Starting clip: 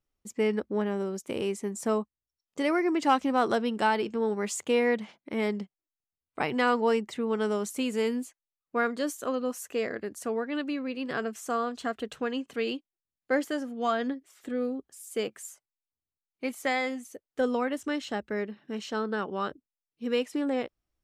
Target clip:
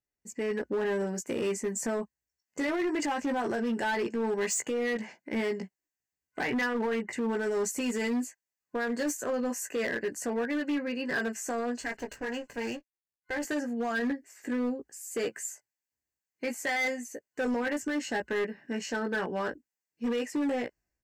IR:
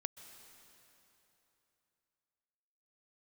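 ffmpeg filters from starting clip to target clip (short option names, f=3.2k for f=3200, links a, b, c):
-filter_complex "[0:a]asettb=1/sr,asplit=3[a][b][c];[a]atrim=end=11.824[d];[b]atrim=start=11.82:end=13.43,asetpts=PTS-STARTPTS,afade=t=in:d=0.004:c=qsin,afade=t=out:st=1.606:d=0.004:c=qsin,aeval=exprs='max(val(0),0)':c=same[e];[c]atrim=start=13.426[f];[d][e]acrossfade=d=0.004:c1=hsin:c2=qsin[g];[g][f]acrossfade=d=0.004:c1=qsin:c2=hsin,asplit=2[h][i];[i]adelay=17,volume=-4.5dB[j];[h][j]amix=inputs=2:normalize=0,alimiter=limit=-22.5dB:level=0:latency=1:release=30,highpass=f=53:p=1,asettb=1/sr,asplit=3[k][l][m];[k]atrim=end=6.424[n];[l]atrim=start=6.42:end=7.13,asetpts=PTS-STARTPTS,afade=t=in:d=0.004:c=qsin,afade=t=out:st=0.706:d=0.004:c=qsin,highshelf=f=3.3k:t=q:w=1.5:g=-11.5[o];[m]atrim=start=7.126[p];[n][o]acrossfade=d=0.004:c1=hsin:c2=qsin[q];[q][p]acrossfade=d=0.004:c1=qsin:c2=hsin,dynaudnorm=f=100:g=7:m=10.5dB,superequalizer=10b=0.501:11b=2:13b=0.251:15b=1.58:16b=0.631,asoftclip=type=hard:threshold=-16.5dB,volume=-9dB"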